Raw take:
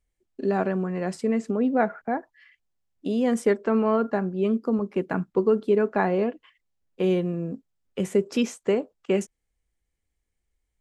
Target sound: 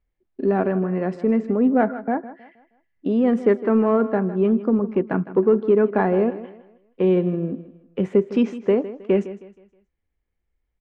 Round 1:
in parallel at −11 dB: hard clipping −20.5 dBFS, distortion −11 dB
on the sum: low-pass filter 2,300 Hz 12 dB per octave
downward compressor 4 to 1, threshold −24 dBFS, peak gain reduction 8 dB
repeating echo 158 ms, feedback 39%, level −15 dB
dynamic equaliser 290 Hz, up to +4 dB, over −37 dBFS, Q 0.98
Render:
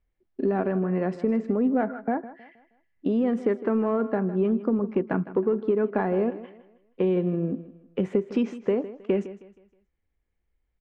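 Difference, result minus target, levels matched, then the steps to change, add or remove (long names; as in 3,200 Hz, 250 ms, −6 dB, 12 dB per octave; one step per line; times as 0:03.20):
downward compressor: peak gain reduction +8 dB
remove: downward compressor 4 to 1, threshold −24 dBFS, peak gain reduction 8 dB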